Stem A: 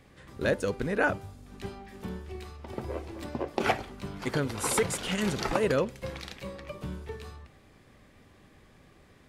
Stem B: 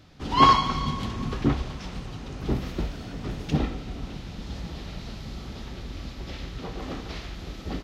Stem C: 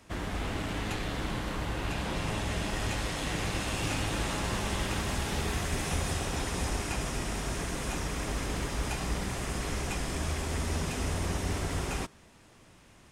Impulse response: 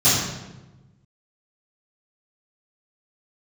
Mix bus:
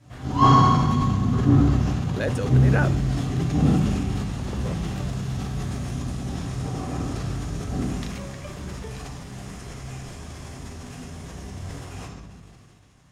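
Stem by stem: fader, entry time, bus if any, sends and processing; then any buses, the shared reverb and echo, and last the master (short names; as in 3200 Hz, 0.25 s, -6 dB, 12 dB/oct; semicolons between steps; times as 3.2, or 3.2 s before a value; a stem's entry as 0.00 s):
-1.0 dB, 1.75 s, muted 5.09–8.02, no send, dry
-12.5 dB, 0.00 s, send -7 dB, band shelf 3300 Hz -8.5 dB
-3.0 dB, 0.00 s, send -20.5 dB, compressor, threshold -33 dBFS, peak gain reduction 8 dB; detuned doubles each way 43 cents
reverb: on, RT60 1.1 s, pre-delay 3 ms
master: sustainer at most 24 dB/s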